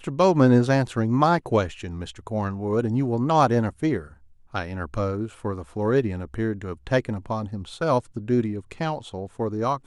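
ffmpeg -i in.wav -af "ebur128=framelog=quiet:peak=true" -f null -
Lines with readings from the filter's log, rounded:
Integrated loudness:
  I:         -24.2 LUFS
  Threshold: -34.5 LUFS
Loudness range:
  LRA:         5.2 LU
  Threshold: -45.4 LUFS
  LRA low:   -27.6 LUFS
  LRA high:  -22.3 LUFS
True peak:
  Peak:       -5.8 dBFS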